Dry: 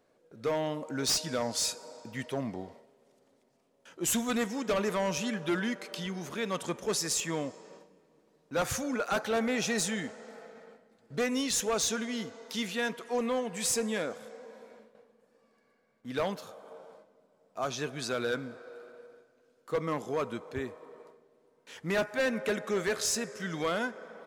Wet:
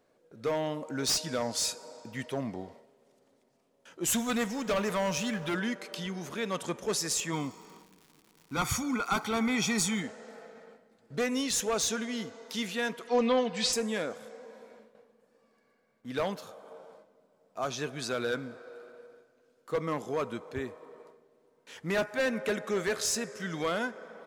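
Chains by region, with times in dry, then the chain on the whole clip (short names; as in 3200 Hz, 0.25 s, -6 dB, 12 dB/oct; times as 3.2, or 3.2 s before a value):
4.09–5.54 G.711 law mismatch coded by mu + bell 350 Hz -6 dB 0.53 oct
7.32–10.01 comb 0.9 ms, depth 80% + crackle 230/s -45 dBFS
13.07–13.73 synth low-pass 4400 Hz, resonance Q 2.4 + comb 4 ms, depth 74%
whole clip: dry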